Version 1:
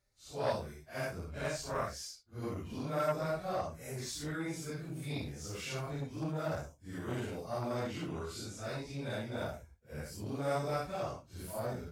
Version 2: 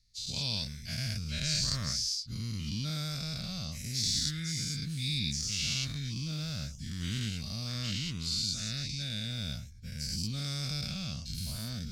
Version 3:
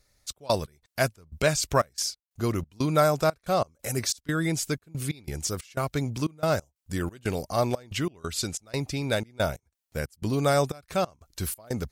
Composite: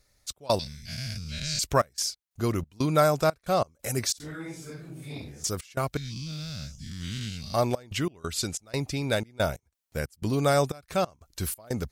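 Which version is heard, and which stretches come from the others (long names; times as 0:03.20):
3
0:00.59–0:01.59: punch in from 2
0:04.20–0:05.44: punch in from 1
0:05.97–0:07.54: punch in from 2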